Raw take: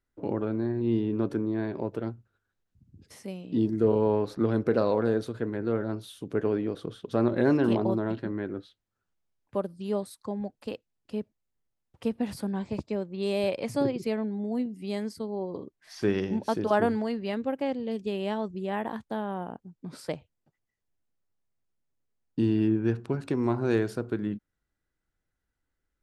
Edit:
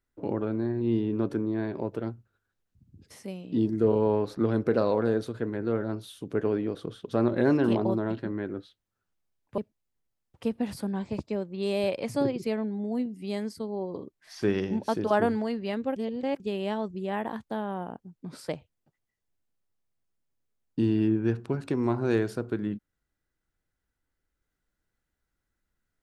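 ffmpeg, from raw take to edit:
-filter_complex "[0:a]asplit=4[s0][s1][s2][s3];[s0]atrim=end=9.582[s4];[s1]atrim=start=11.178:end=17.562[s5];[s2]atrim=start=17.558:end=18.002,asetpts=PTS-STARTPTS,areverse[s6];[s3]atrim=start=17.998[s7];[s4][s5]acrossfade=d=0.004:c1=hsin:c2=hsin[s8];[s8][s6]acrossfade=d=0.004:c1=hsin:c2=hsin[s9];[s9][s7]acrossfade=d=0.004:c1=hsin:c2=hsin"

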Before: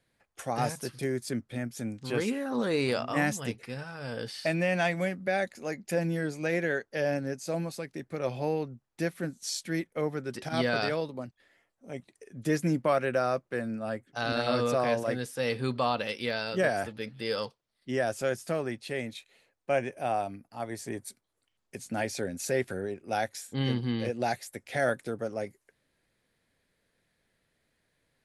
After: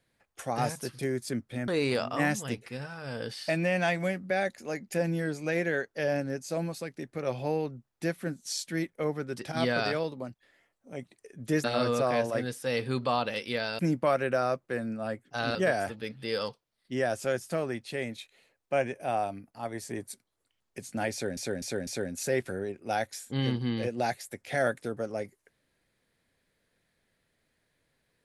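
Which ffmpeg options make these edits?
-filter_complex "[0:a]asplit=8[s0][s1][s2][s3][s4][s5][s6][s7];[s0]atrim=end=1.682[s8];[s1]atrim=start=2.648:end=12.612[s9];[s2]atrim=start=14.368:end=16.522[s10];[s3]atrim=start=12.608:end=14.372[s11];[s4]atrim=start=16.518:end=22.342[s12];[s5]atrim=start=22.088:end=22.342[s13];[s6]atrim=start=22.088:end=22.342[s14];[s7]atrim=start=22.088[s15];[s8][s9]acrossfade=d=0.004:c1=hsin:c2=hsin[s16];[s16][s10]acrossfade=d=0.004:c1=hsin:c2=hsin[s17];[s17][s11]acrossfade=d=0.004:c1=hsin:c2=hsin[s18];[s18][s12]acrossfade=d=0.004:c1=hsin:c2=hsin[s19];[s19][s13]acrossfade=d=0.004:c1=hsin:c2=hsin[s20];[s20][s14]acrossfade=d=0.004:c1=hsin:c2=hsin[s21];[s21][s15]acrossfade=d=0.004:c1=hsin:c2=hsin"

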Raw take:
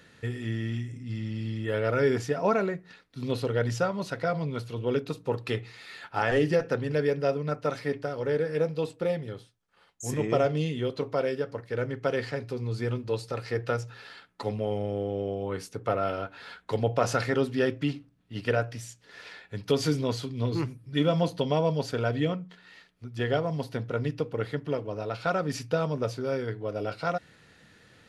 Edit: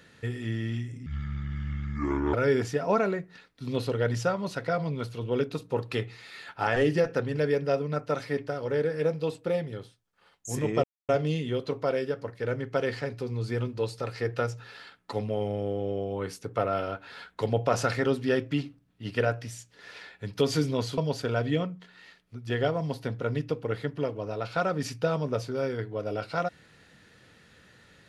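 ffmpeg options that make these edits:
-filter_complex "[0:a]asplit=5[s0][s1][s2][s3][s4];[s0]atrim=end=1.064[s5];[s1]atrim=start=1.06:end=1.89,asetpts=PTS-STARTPTS,asetrate=28665,aresample=44100,atrim=end_sample=56312,asetpts=PTS-STARTPTS[s6];[s2]atrim=start=1.886:end=10.39,asetpts=PTS-STARTPTS,afade=t=out:st=8.5:d=0.004:c=hsin,apad=pad_dur=0.25[s7];[s3]atrim=start=10.39:end=20.282,asetpts=PTS-STARTPTS,afade=t=in:d=0.004:c=hsin[s8];[s4]atrim=start=21.668[s9];[s5][s6]acrossfade=d=0.004:c1=hsin:c2=hsin[s10];[s7][s8]concat=n=2:v=0:a=1[s11];[s10][s11]acrossfade=d=0.004:c1=hsin:c2=hsin[s12];[s12][s9]acrossfade=d=0.004:c1=hsin:c2=hsin"

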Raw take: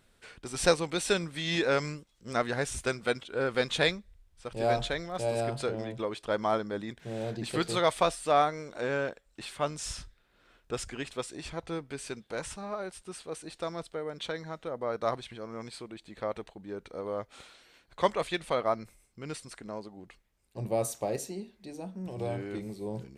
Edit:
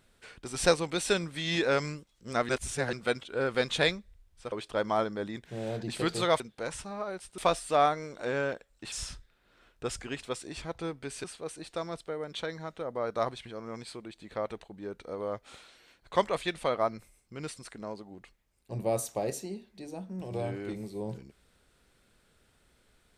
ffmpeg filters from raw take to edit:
-filter_complex "[0:a]asplit=8[s0][s1][s2][s3][s4][s5][s6][s7];[s0]atrim=end=2.492[s8];[s1]atrim=start=2.488:end=2.932,asetpts=PTS-STARTPTS,areverse[s9];[s2]atrim=start=2.928:end=4.522[s10];[s3]atrim=start=6.058:end=7.942[s11];[s4]atrim=start=12.118:end=13.102[s12];[s5]atrim=start=7.938:end=9.482[s13];[s6]atrim=start=9.798:end=12.122[s14];[s7]atrim=start=13.098[s15];[s8][s9]acrossfade=d=0.004:c1=hsin:c2=hsin[s16];[s16][s10]acrossfade=d=0.004:c1=hsin:c2=hsin[s17];[s17][s11]acrossfade=d=0.004:c1=hsin:c2=hsin[s18];[s18][s12]acrossfade=d=0.004:c1=hsin:c2=hsin[s19];[s19][s13]acrossfade=d=0.004:c1=hsin:c2=hsin[s20];[s20][s14]acrossfade=d=0.004:c1=hsin:c2=hsin[s21];[s21][s15]acrossfade=d=0.004:c1=hsin:c2=hsin"

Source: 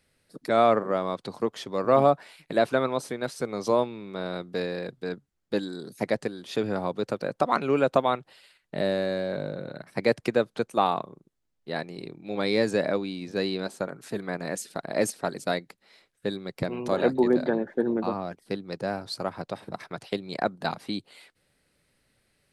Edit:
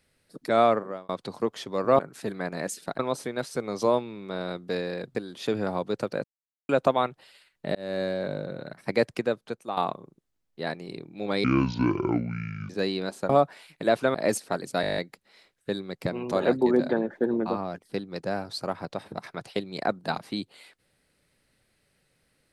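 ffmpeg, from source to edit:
-filter_complex "[0:a]asplit=21[s0][s1][s2][s3][s4][s5][s6][s7][s8][s9][s10][s11][s12][s13][s14][s15][s16][s17][s18][s19][s20];[s0]atrim=end=1.09,asetpts=PTS-STARTPTS,afade=t=out:st=0.64:d=0.45[s21];[s1]atrim=start=1.09:end=1.992,asetpts=PTS-STARTPTS,afade=t=in:d=0.004:c=hsin[s22];[s2]atrim=start=13.868:end=14.872[s23];[s3]atrim=start=2.838:end=5.002[s24];[s4]atrim=start=6.238:end=7.33,asetpts=PTS-STARTPTS,afade=t=out:st=1.088:d=0.004:c=hsin[s25];[s5]atrim=start=7.33:end=7.78,asetpts=PTS-STARTPTS,volume=0[s26];[s6]atrim=start=7.78:end=8.84,asetpts=PTS-STARTPTS,afade=t=in:d=0.004:c=hsin,afade=t=out:st=1.056:d=0.004:c=hsin[s27];[s7]atrim=start=8.84:end=10.86,asetpts=PTS-STARTPTS,afade=t=in:d=0.26,afade=t=out:st=1.19:d=0.83:silence=0.266073[s28];[s8]atrim=start=10.86:end=12.534,asetpts=PTS-STARTPTS,afade=t=in:d=0.004:c=hsin:silence=0.266073[s29];[s9]atrim=start=12.53:end=13.27,asetpts=PTS-STARTPTS,asetrate=26019,aresample=44100[s30];[s10]atrim=start=13.266:end=13.872[s31];[s11]atrim=start=1.988:end=2.842[s32];[s12]atrim=start=14.868:end=15.562[s33];[s13]atrim=start=15.538:end=15.562[s34];[s14]atrim=start=15.538:end=15.562[s35];[s15]atrim=start=15.538:end=15.562[s36];[s16]atrim=start=15.538:end=15.562[s37];[s17]atrim=start=15.538:end=15.562[s38];[s18]atrim=start=15.538:end=15.562[s39];[s19]atrim=start=15.538:end=15.562[s40];[s20]atrim=start=15.538[s41];[s21][s22]concat=n=2:v=0:a=1[s42];[s42][s23]acrossfade=d=0.004:c1=hsin:c2=hsin[s43];[s43][s24]acrossfade=d=0.004:c1=hsin:c2=hsin[s44];[s25][s26][s27][s28][s29]concat=n=5:v=0:a=1[s45];[s44][s45]acrossfade=d=0.004:c1=hsin:c2=hsin[s46];[s46][s30]acrossfade=d=0.004:c1=hsin:c2=hsin[s47];[s47][s31]acrossfade=d=0.004:c1=hsin:c2=hsin[s48];[s48][s32]acrossfade=d=0.004:c1=hsin:c2=hsin[s49];[s49][s33]acrossfade=d=0.004:c1=hsin:c2=hsin[s50];[s50][s34]acrossfade=d=0.004:c1=hsin:c2=hsin[s51];[s51][s35]acrossfade=d=0.004:c1=hsin:c2=hsin[s52];[s52][s36]acrossfade=d=0.004:c1=hsin:c2=hsin[s53];[s53][s37]acrossfade=d=0.004:c1=hsin:c2=hsin[s54];[s54][s38]acrossfade=d=0.004:c1=hsin:c2=hsin[s55];[s55][s39]acrossfade=d=0.004:c1=hsin:c2=hsin[s56];[s56][s40]acrossfade=d=0.004:c1=hsin:c2=hsin[s57];[s57][s41]acrossfade=d=0.004:c1=hsin:c2=hsin"

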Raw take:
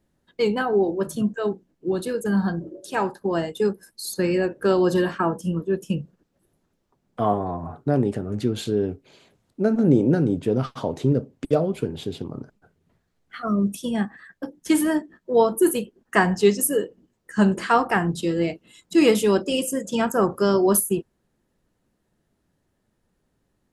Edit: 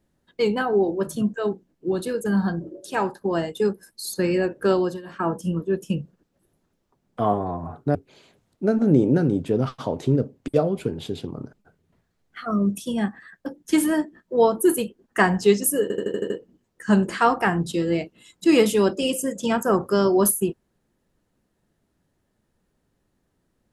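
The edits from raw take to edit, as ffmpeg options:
-filter_complex "[0:a]asplit=10[s0][s1][s2][s3][s4][s5][s6][s7][s8][s9];[s0]atrim=end=5.01,asetpts=PTS-STARTPTS,afade=t=out:st=4.73:d=0.28:silence=0.0841395[s10];[s1]atrim=start=5.01:end=5.03,asetpts=PTS-STARTPTS,volume=0.0841[s11];[s2]atrim=start=5.03:end=7.952,asetpts=PTS-STARTPTS,afade=t=in:d=0.28:silence=0.0841395[s12];[s3]atrim=start=8.918:end=16.872[s13];[s4]atrim=start=16.788:end=16.872[s14];[s5]atrim=start=16.788:end=16.872[s15];[s6]atrim=start=16.788:end=16.872[s16];[s7]atrim=start=16.788:end=16.872[s17];[s8]atrim=start=16.788:end=16.872[s18];[s9]atrim=start=16.788[s19];[s10][s11][s12]concat=n=3:v=0:a=1[s20];[s20][s13]acrossfade=d=0.004:c1=hsin:c2=hsin[s21];[s21][s14]acrossfade=d=0.004:c1=hsin:c2=hsin[s22];[s22][s15]acrossfade=d=0.004:c1=hsin:c2=hsin[s23];[s23][s16]acrossfade=d=0.004:c1=hsin:c2=hsin[s24];[s24][s17]acrossfade=d=0.004:c1=hsin:c2=hsin[s25];[s25][s18]acrossfade=d=0.004:c1=hsin:c2=hsin[s26];[s26][s19]acrossfade=d=0.004:c1=hsin:c2=hsin"

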